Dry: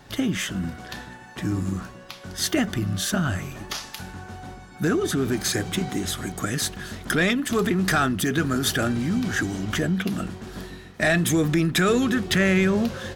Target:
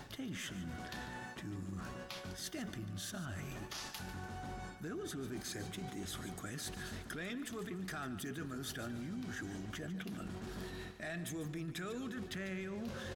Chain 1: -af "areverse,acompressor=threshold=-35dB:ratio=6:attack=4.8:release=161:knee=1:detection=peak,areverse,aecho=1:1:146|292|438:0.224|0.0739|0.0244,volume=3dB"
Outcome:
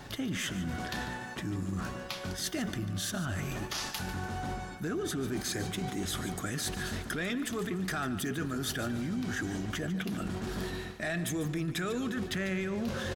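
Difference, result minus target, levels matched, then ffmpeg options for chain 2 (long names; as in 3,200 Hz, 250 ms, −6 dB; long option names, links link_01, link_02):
downward compressor: peak gain reduction −9 dB
-af "areverse,acompressor=threshold=-46dB:ratio=6:attack=4.8:release=161:knee=1:detection=peak,areverse,aecho=1:1:146|292|438:0.224|0.0739|0.0244,volume=3dB"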